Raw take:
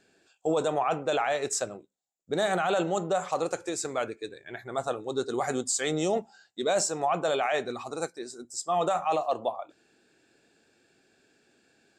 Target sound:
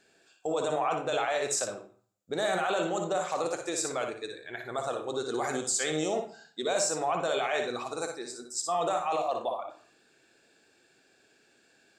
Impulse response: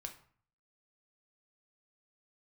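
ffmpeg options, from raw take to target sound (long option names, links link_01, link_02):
-filter_complex "[0:a]alimiter=limit=-21dB:level=0:latency=1:release=33,lowshelf=frequency=380:gain=-7,asplit=2[link_01][link_02];[1:a]atrim=start_sample=2205,adelay=58[link_03];[link_02][link_03]afir=irnorm=-1:irlink=0,volume=-1dB[link_04];[link_01][link_04]amix=inputs=2:normalize=0,volume=1.5dB"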